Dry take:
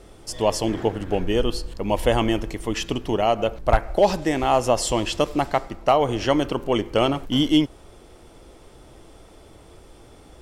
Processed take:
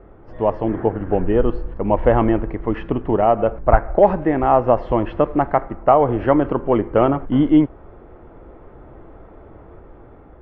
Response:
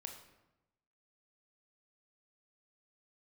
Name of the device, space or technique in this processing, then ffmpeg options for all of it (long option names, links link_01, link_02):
action camera in a waterproof case: -af "lowpass=frequency=1700:width=0.5412,lowpass=frequency=1700:width=1.3066,dynaudnorm=framelen=370:gausssize=5:maxgain=4dB,volume=2dB" -ar 16000 -c:a aac -b:a 48k